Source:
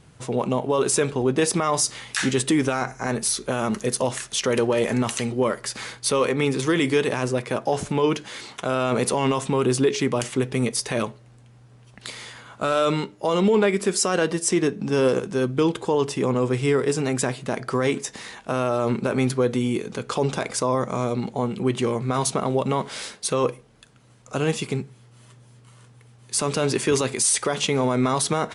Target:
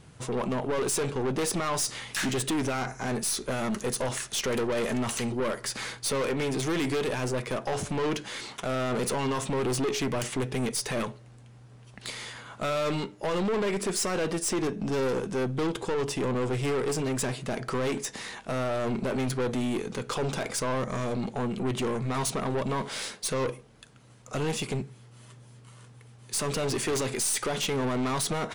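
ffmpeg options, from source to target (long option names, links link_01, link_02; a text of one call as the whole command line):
ffmpeg -i in.wav -af "aeval=exprs='(tanh(17.8*val(0)+0.2)-tanh(0.2))/17.8':channel_layout=same" out.wav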